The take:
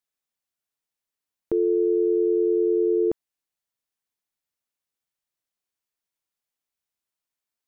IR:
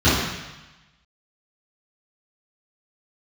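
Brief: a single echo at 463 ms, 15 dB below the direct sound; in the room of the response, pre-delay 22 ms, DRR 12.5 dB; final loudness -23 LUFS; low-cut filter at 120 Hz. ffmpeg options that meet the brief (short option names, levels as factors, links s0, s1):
-filter_complex "[0:a]highpass=120,aecho=1:1:463:0.178,asplit=2[s0][s1];[1:a]atrim=start_sample=2205,adelay=22[s2];[s1][s2]afir=irnorm=-1:irlink=0,volume=0.0178[s3];[s0][s3]amix=inputs=2:normalize=0,volume=0.708"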